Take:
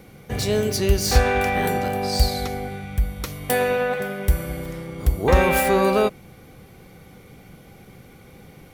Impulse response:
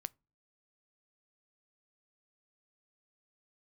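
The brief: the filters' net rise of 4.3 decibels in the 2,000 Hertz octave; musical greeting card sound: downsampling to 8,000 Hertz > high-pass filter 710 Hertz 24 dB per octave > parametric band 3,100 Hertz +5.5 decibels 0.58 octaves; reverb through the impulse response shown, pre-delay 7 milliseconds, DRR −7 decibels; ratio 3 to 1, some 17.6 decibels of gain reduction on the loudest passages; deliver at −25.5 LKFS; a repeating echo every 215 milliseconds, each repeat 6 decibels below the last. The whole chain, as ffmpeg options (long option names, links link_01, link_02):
-filter_complex "[0:a]equalizer=frequency=2000:width_type=o:gain=4,acompressor=threshold=-36dB:ratio=3,aecho=1:1:215|430|645|860|1075|1290:0.501|0.251|0.125|0.0626|0.0313|0.0157,asplit=2[link_01][link_02];[1:a]atrim=start_sample=2205,adelay=7[link_03];[link_02][link_03]afir=irnorm=-1:irlink=0,volume=10dB[link_04];[link_01][link_04]amix=inputs=2:normalize=0,aresample=8000,aresample=44100,highpass=frequency=710:width=0.5412,highpass=frequency=710:width=1.3066,equalizer=frequency=3100:width_type=o:width=0.58:gain=5.5,volume=6.5dB"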